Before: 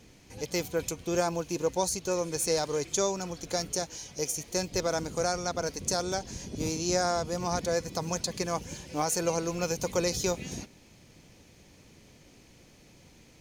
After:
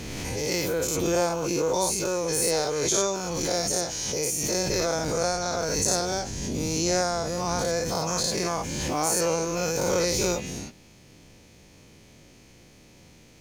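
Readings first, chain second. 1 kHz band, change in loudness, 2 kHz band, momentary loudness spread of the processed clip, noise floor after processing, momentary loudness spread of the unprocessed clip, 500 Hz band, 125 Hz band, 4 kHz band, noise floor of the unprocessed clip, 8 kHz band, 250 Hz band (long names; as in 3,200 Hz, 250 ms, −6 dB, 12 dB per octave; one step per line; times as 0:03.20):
+4.0 dB, +5.0 dB, +5.5 dB, 5 LU, −53 dBFS, 7 LU, +4.0 dB, +4.5 dB, +6.0 dB, −57 dBFS, +6.5 dB, +4.0 dB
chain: every bin's largest magnitude spread in time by 120 ms
background raised ahead of every attack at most 21 dB per second
level −1.5 dB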